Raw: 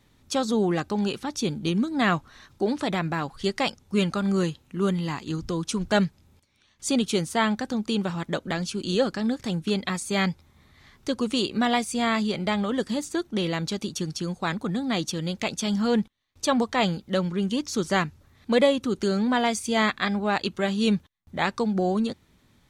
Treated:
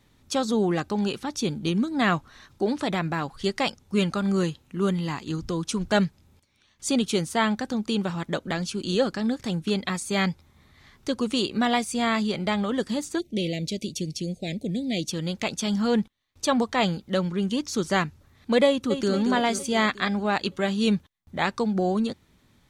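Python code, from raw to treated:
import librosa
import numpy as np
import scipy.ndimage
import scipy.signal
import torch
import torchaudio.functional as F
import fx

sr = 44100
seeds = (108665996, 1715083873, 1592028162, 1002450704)

y = fx.ellip_bandstop(x, sr, low_hz=630.0, high_hz=2200.0, order=3, stop_db=60, at=(13.18, 15.1), fade=0.02)
y = fx.echo_throw(y, sr, start_s=18.67, length_s=0.45, ms=230, feedback_pct=60, wet_db=-7.0)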